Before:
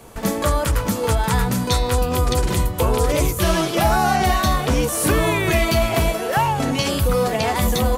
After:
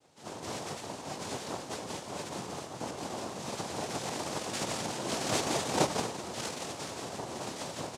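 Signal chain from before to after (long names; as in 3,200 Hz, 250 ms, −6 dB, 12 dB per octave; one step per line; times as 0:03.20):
chorus effect 2.2 Hz, delay 18 ms, depth 7.2 ms
0:04.53–0:05.83: flat-topped bell 910 Hz +10 dB
resonators tuned to a chord A#2 fifth, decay 0.21 s
loudspeakers that aren't time-aligned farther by 60 metres −4 dB, 76 metres −7 dB
cochlear-implant simulation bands 2
level −5.5 dB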